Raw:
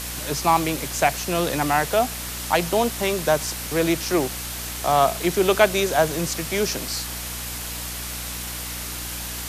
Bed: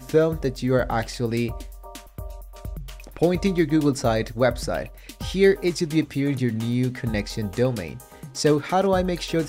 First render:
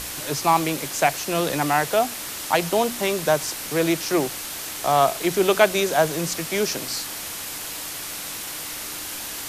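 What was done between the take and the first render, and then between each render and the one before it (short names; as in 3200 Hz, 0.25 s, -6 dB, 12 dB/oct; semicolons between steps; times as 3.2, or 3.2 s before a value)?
notches 60/120/180/240 Hz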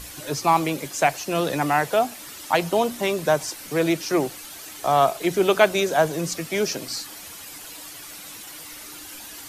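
denoiser 10 dB, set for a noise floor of -33 dBFS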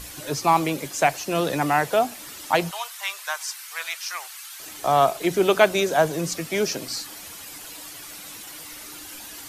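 2.71–4.6 inverse Chebyshev high-pass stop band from 230 Hz, stop band 70 dB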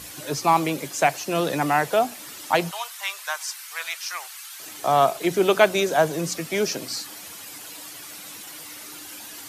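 HPF 100 Hz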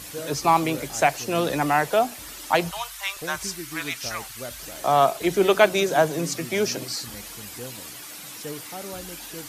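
add bed -17 dB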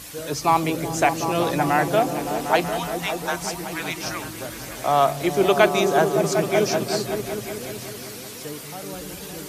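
repeats that get brighter 0.188 s, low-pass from 200 Hz, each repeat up 1 oct, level 0 dB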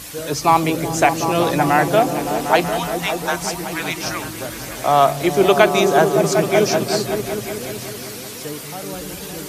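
gain +4.5 dB; limiter -1 dBFS, peak gain reduction 2.5 dB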